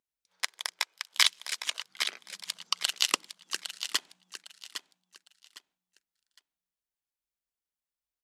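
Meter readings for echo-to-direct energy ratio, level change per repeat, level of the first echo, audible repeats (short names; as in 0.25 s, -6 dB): -9.0 dB, -11.5 dB, -9.5 dB, 3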